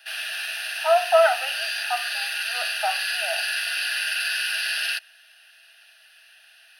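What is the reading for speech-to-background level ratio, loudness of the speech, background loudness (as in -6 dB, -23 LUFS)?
1.5 dB, -24.0 LUFS, -25.5 LUFS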